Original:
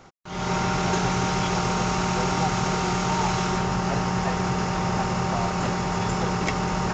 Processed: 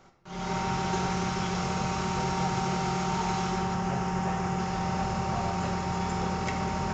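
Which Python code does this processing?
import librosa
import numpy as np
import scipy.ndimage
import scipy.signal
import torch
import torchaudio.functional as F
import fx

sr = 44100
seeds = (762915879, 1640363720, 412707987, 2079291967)

y = fx.peak_eq(x, sr, hz=4300.0, db=-6.0, octaves=0.49, at=(3.74, 4.6))
y = fx.room_shoebox(y, sr, seeds[0], volume_m3=880.0, walls='mixed', distance_m=1.1)
y = y * 10.0 ** (-8.0 / 20.0)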